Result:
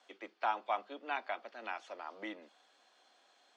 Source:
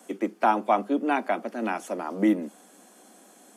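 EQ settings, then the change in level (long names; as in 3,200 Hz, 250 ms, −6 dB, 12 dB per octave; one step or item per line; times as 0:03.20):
high-pass filter 740 Hz 12 dB per octave
transistor ladder low-pass 4,800 Hz, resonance 45%
−1.0 dB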